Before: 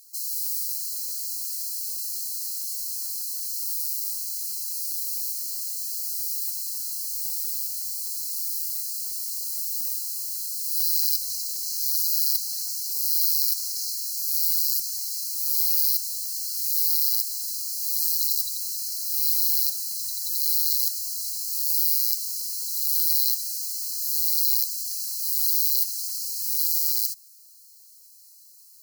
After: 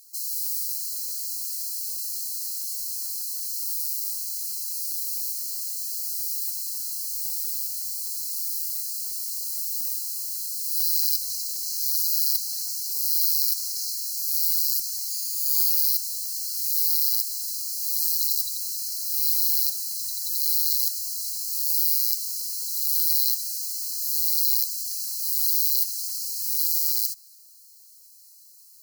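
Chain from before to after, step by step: 15.09–15.7 ripple EQ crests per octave 1.8, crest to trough 9 dB; tape echo 0.293 s, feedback 45%, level -17.5 dB, low-pass 1300 Hz

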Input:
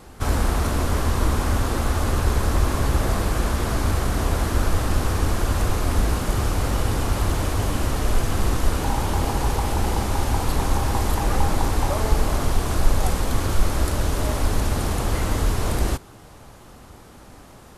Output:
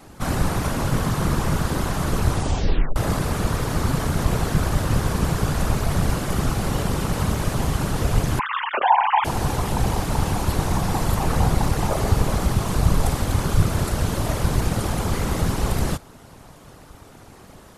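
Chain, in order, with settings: 8.39–9.25 sine-wave speech; whisperiser; 2.28 tape stop 0.68 s

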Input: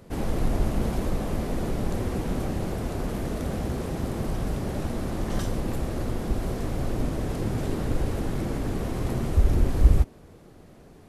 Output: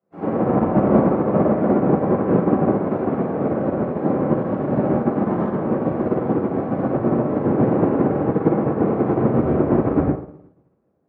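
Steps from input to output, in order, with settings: HPF 89 Hz 24 dB/oct; three-band isolator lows -20 dB, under 180 Hz, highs -17 dB, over 2100 Hz; treble ducked by the level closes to 2300 Hz, closed at -29.5 dBFS; high shelf 2000 Hz -9 dB; band-limited delay 0.112 s, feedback 32%, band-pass 710 Hz, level -3 dB; shoebox room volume 610 m³, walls mixed, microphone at 6.8 m; upward expander 2.5:1, over -37 dBFS; gain +3.5 dB

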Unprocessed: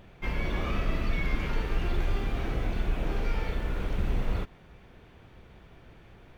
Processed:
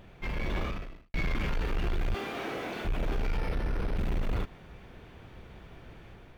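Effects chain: 2.14–2.85 HPF 320 Hz 12 dB/oct; soft clip -28 dBFS, distortion -10 dB; AGC gain up to 3.5 dB; 0.59–1.14 fade out quadratic; 3.38–3.97 decimation joined by straight lines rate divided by 6×

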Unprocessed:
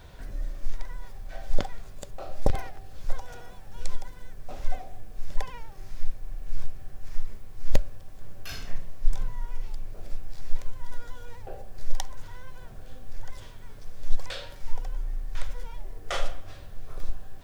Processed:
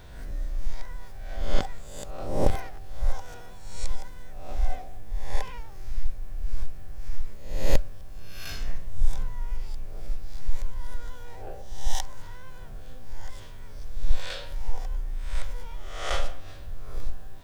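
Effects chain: spectral swells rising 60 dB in 0.74 s; gain -1.5 dB

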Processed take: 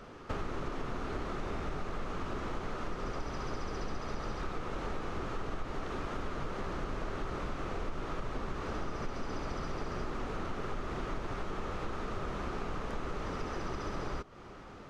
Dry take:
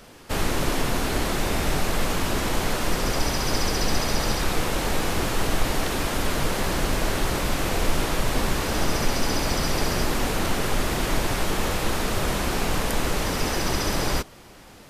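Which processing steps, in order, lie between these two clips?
thirty-one-band EQ 400 Hz +4 dB, 1250 Hz +9 dB, 6300 Hz +4 dB; compressor, threshold -31 dBFS, peak gain reduction 16 dB; tape spacing loss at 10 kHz 24 dB; gain -1.5 dB

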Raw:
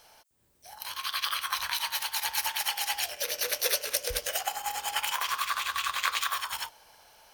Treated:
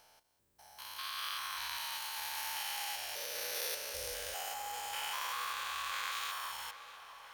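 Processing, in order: stepped spectrum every 0.2 s; tape echo 0.652 s, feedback 73%, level -13 dB, low-pass 4000 Hz; gain -5.5 dB

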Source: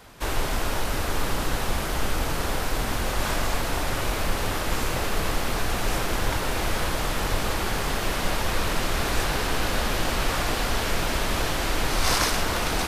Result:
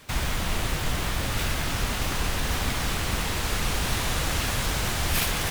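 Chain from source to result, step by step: speed mistake 33 rpm record played at 78 rpm; gain -2 dB

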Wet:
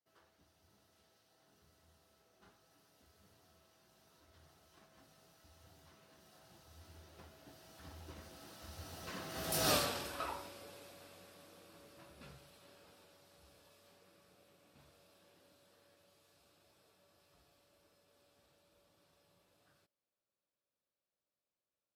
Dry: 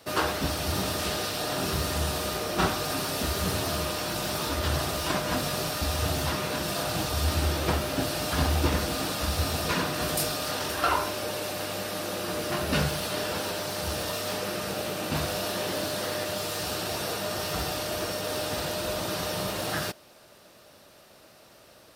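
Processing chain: Doppler pass-by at 9.72, 22 m/s, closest 1.3 m; gain +1.5 dB

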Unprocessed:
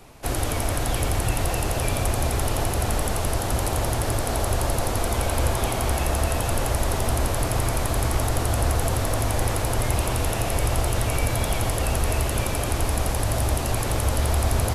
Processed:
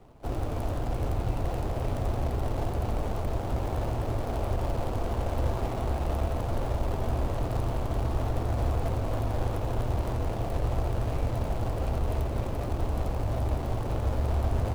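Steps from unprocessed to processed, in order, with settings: median filter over 25 samples; gain -4.5 dB

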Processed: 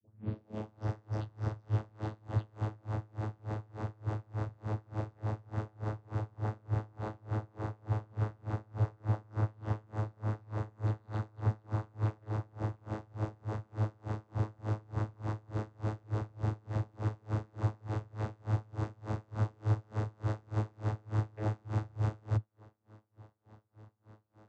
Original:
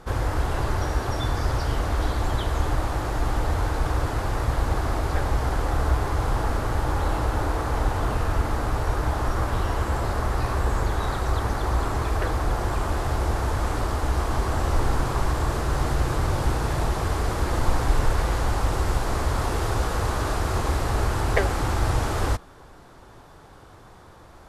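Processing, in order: tape start at the beginning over 0.91 s; vocoder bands 16, saw 107 Hz; dB-linear tremolo 3.4 Hz, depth 32 dB

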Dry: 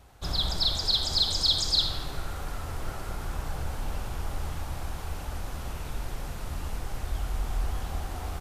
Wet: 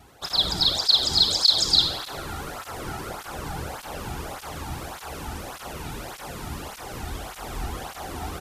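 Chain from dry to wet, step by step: tape flanging out of phase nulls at 1.7 Hz, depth 2 ms; gain +8.5 dB

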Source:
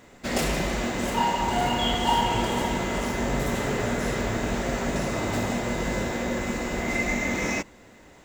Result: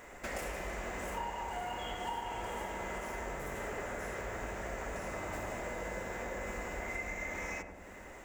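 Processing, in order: graphic EQ 125/250/2000/4000 Hz -11/-9/+3/-11 dB; compressor 4:1, threshold -43 dBFS, peak gain reduction 19 dB; darkening echo 93 ms, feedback 77%, low-pass 910 Hz, level -4.5 dB; gain +2.5 dB

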